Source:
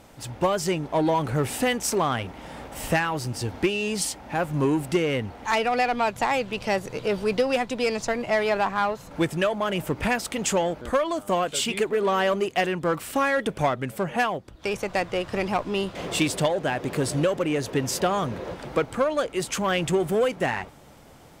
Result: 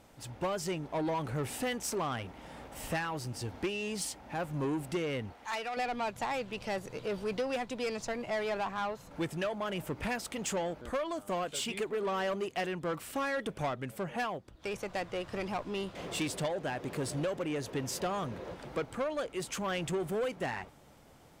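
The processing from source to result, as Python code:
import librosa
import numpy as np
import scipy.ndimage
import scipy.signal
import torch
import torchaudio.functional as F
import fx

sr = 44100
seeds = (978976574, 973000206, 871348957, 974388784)

y = 10.0 ** (-18.0 / 20.0) * np.tanh(x / 10.0 ** (-18.0 / 20.0))
y = fx.low_shelf(y, sr, hz=470.0, db=-11.0, at=(5.33, 5.77))
y = y * 10.0 ** (-8.5 / 20.0)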